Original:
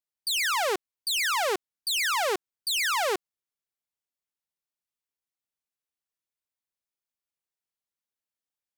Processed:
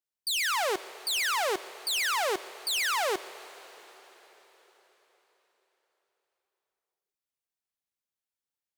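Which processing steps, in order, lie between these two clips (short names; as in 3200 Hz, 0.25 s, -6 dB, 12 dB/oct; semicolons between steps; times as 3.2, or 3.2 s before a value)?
plate-style reverb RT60 4.7 s, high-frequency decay 0.95×, DRR 14.5 dB; gain -2 dB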